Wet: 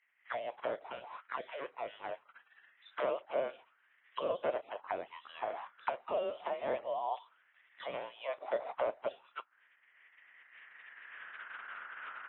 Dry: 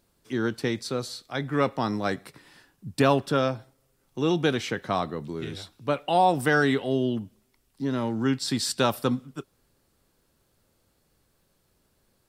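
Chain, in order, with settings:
camcorder AGC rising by 12 dB per second
gate on every frequency bin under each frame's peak −20 dB weak
low-shelf EQ 250 Hz −7.5 dB
voice inversion scrambler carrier 3,900 Hz
envelope filter 600–2,000 Hz, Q 6, down, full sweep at −37.5 dBFS
level +15.5 dB

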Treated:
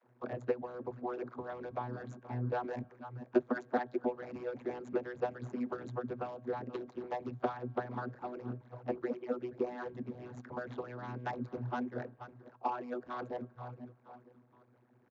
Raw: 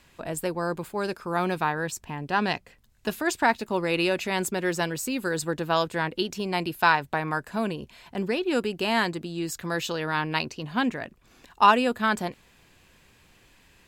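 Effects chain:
running median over 15 samples
high-shelf EQ 4,600 Hz −8.5 dB
on a send: echo with shifted repeats 435 ms, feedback 41%, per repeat −68 Hz, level −19 dB
on the sum: dynamic equaliser 1,200 Hz, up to −5 dB, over −39 dBFS, Q 1.9
downward compressor 6 to 1, threshold −28 dBFS, peak gain reduction 12 dB
channel vocoder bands 32, saw 134 Hz
spring reverb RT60 1.6 s, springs 31 ms, chirp 45 ms, DRR 19 dB
harmonic and percussive parts rebalanced harmonic −17 dB
wrong playback speed 48 kHz file played as 44.1 kHz
level +6.5 dB

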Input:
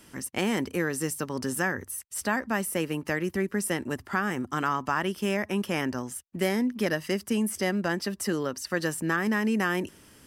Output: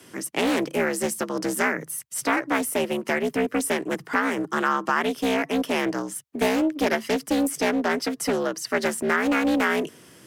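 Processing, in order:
frequency shifter +65 Hz
highs frequency-modulated by the lows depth 0.37 ms
level +4.5 dB

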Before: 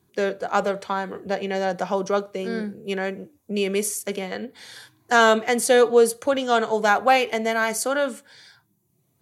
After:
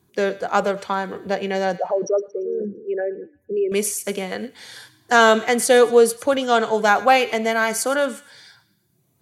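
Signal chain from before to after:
0:01.77–0:03.72: spectral envelope exaggerated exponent 3
on a send: delay with a high-pass on its return 114 ms, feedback 43%, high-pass 1,500 Hz, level −16.5 dB
on the sum: level +2.5 dB

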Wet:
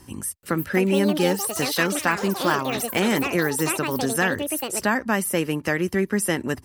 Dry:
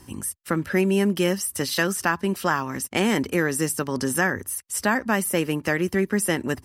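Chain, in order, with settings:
delay with pitch and tempo change per echo 430 ms, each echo +7 semitones, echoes 3, each echo −6 dB

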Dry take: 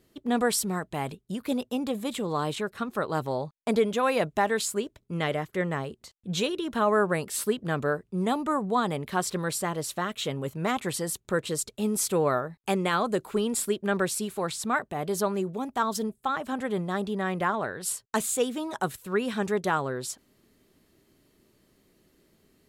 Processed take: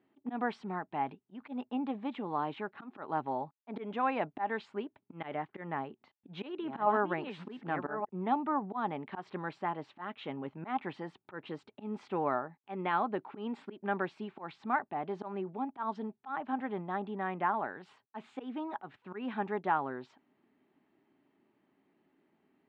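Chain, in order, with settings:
0:05.68–0:08.09: delay that plays each chunk backwards 592 ms, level −6 dB
volume swells 123 ms
loudspeaker in its box 200–2,700 Hz, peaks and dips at 270 Hz +5 dB, 500 Hz −7 dB, 840 Hz +10 dB
level −7 dB

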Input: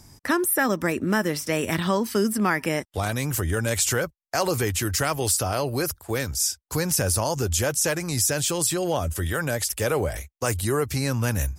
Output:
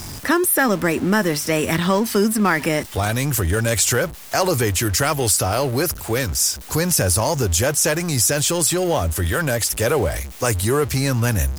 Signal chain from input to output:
converter with a step at zero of −32 dBFS
level +4 dB

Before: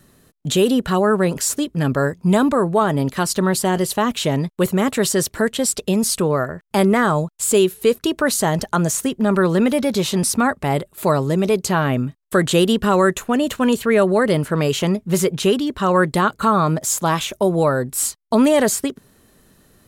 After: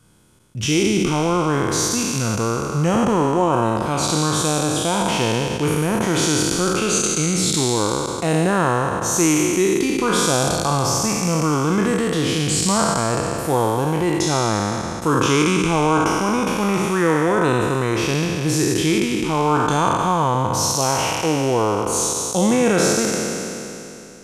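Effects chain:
peak hold with a decay on every bin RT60 2.43 s
speed change −18%
level −5 dB

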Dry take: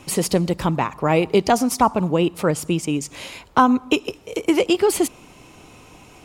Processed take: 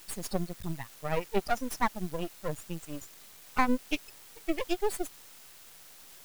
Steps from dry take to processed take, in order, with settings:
spectral dynamics exaggerated over time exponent 3
in parallel at −5.5 dB: bit-depth reduction 6 bits, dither triangular
on the sum: half-wave rectification
level −7.5 dB

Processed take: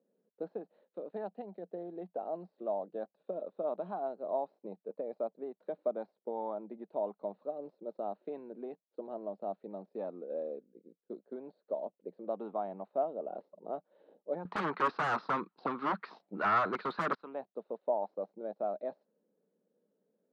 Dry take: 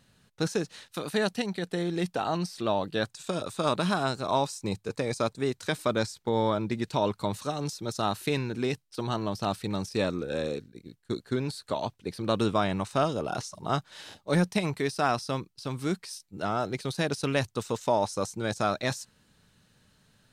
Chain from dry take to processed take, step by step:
stylus tracing distortion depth 0.032 ms
Chebyshev band-pass filter 190–4,200 Hz, order 4
0:14.45–0:17.15: sine wavefolder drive 19 dB, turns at −10.5 dBFS
tilt shelving filter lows +9.5 dB, about 630 Hz
envelope filter 490–1,300 Hz, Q 4.1, up, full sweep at −12 dBFS
expander for the loud parts 1.5 to 1, over −29 dBFS

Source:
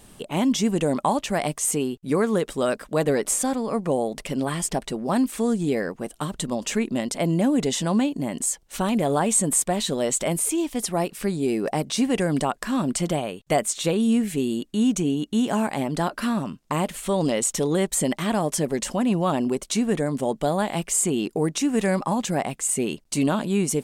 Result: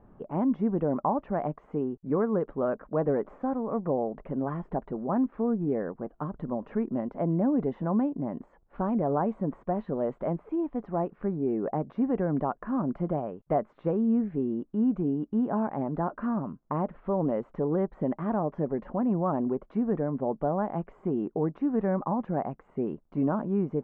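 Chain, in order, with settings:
low-pass filter 1,300 Hz 24 dB per octave
level −4.5 dB

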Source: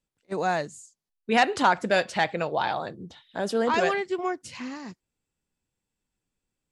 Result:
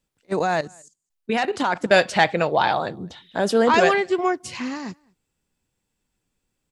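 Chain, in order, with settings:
0:00.39–0:01.91: output level in coarse steps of 14 dB
slap from a distant wall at 36 metres, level −29 dB
level +7 dB

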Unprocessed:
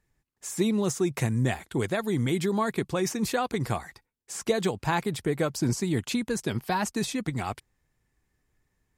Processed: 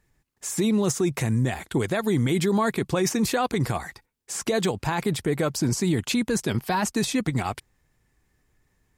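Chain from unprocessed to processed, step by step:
in parallel at −2.5 dB: output level in coarse steps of 16 dB
on the sum: brickwall limiter −18.5 dBFS, peak gain reduction 8 dB
level +3.5 dB

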